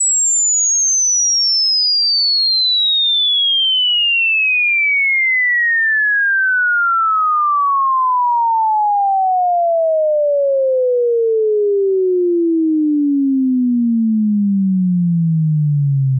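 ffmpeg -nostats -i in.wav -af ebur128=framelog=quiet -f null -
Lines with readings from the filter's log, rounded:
Integrated loudness:
  I:         -13.0 LUFS
  Threshold: -23.0 LUFS
Loudness range:
  LRA:         4.1 LU
  Threshold: -33.1 LUFS
  LRA low:   -15.1 LUFS
  LRA high:  -11.0 LUFS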